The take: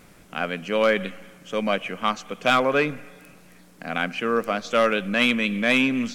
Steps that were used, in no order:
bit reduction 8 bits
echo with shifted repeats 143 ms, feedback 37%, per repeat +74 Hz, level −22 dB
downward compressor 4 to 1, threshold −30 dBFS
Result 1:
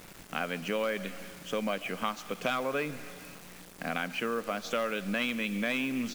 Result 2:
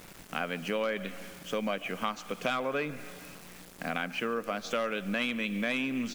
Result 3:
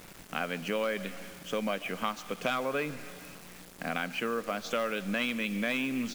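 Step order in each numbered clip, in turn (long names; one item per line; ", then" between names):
downward compressor, then echo with shifted repeats, then bit reduction
bit reduction, then downward compressor, then echo with shifted repeats
downward compressor, then bit reduction, then echo with shifted repeats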